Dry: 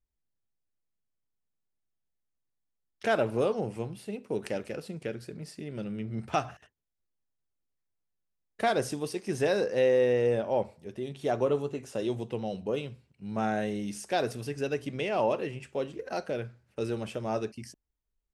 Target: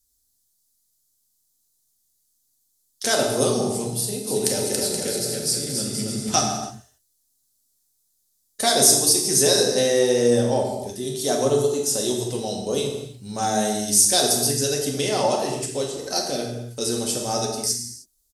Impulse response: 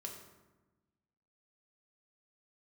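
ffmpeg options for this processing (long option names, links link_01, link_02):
-filter_complex "[0:a]asplit=3[link_01][link_02][link_03];[link_01]afade=type=out:start_time=4.26:duration=0.02[link_04];[link_02]aecho=1:1:280|476|613.2|709.2|776.5:0.631|0.398|0.251|0.158|0.1,afade=type=in:start_time=4.26:duration=0.02,afade=type=out:start_time=6.48:duration=0.02[link_05];[link_03]afade=type=in:start_time=6.48:duration=0.02[link_06];[link_04][link_05][link_06]amix=inputs=3:normalize=0[link_07];[1:a]atrim=start_sample=2205,afade=type=out:start_time=0.26:duration=0.01,atrim=end_sample=11907,asetrate=28665,aresample=44100[link_08];[link_07][link_08]afir=irnorm=-1:irlink=0,aexciter=amount=8.5:drive=7.8:freq=3900,volume=6dB"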